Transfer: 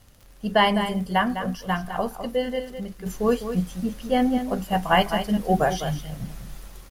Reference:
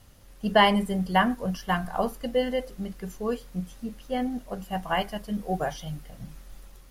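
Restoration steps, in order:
click removal
echo removal 205 ms −9.5 dB
level correction −7.5 dB, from 0:03.06

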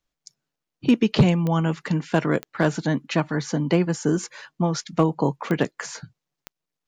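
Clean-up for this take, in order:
clipped peaks rebuilt −9 dBFS
click removal

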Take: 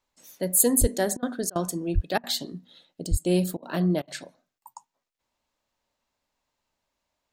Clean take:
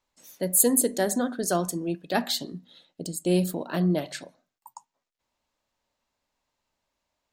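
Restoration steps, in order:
high-pass at the plosives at 0:00.80/0:01.94/0:03.10
repair the gap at 0:01.17/0:01.50/0:02.18/0:03.57/0:04.02, 55 ms

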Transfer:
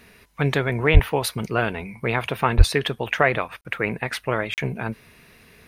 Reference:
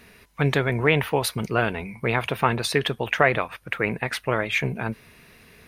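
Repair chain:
high-pass at the plosives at 0:00.93/0:02.57
repair the gap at 0:03.61/0:04.54, 38 ms

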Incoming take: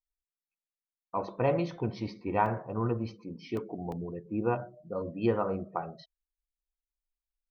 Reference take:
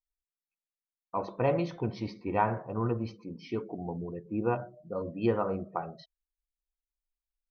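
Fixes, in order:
repair the gap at 0:02.46/0:03.57/0:03.92, 1.7 ms

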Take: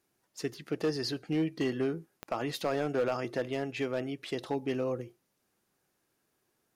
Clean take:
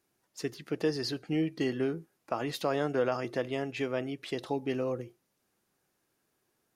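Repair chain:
clipped peaks rebuilt −23.5 dBFS
click removal

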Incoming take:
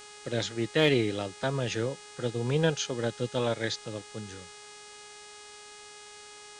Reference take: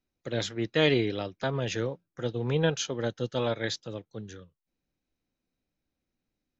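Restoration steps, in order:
clipped peaks rebuilt −14 dBFS
hum removal 416.6 Hz, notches 23
noise reduction from a noise print 30 dB

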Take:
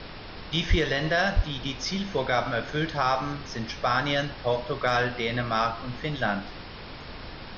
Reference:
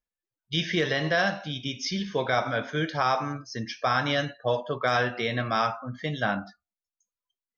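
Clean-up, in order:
0:00.69–0:00.81: high-pass filter 140 Hz 24 dB per octave
0:01.35–0:01.47: high-pass filter 140 Hz 24 dB per octave
noise reduction from a noise print 30 dB

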